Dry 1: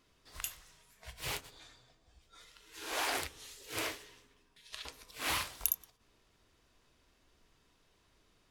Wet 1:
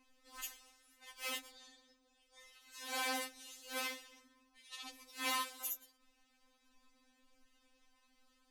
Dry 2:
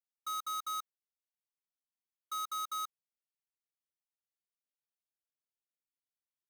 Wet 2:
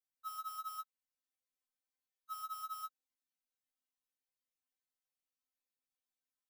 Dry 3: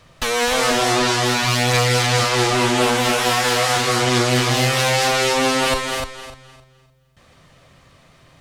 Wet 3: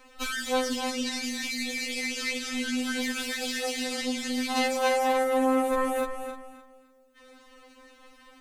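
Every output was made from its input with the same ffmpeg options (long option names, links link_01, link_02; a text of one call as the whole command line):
ffmpeg -i in.wav -af "alimiter=limit=-15.5dB:level=0:latency=1:release=15,acompressor=threshold=-31dB:ratio=1.5,afftfilt=real='re*3.46*eq(mod(b,12),0)':imag='im*3.46*eq(mod(b,12),0)':win_size=2048:overlap=0.75" out.wav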